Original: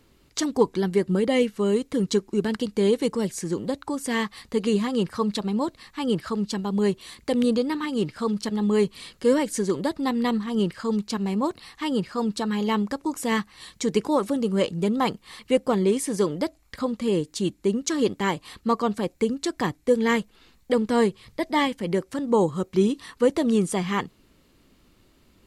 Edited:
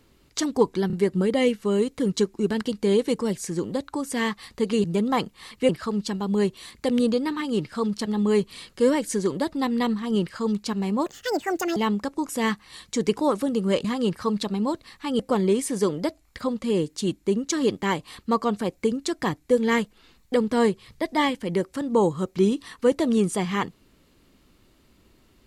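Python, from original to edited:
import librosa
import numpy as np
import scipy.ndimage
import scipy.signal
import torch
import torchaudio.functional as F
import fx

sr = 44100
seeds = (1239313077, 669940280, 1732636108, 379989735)

y = fx.edit(x, sr, fx.stutter(start_s=0.87, slice_s=0.03, count=3),
    fx.swap(start_s=4.78, length_s=1.35, other_s=14.72, other_length_s=0.85),
    fx.speed_span(start_s=11.5, length_s=1.14, speed=1.62), tone=tone)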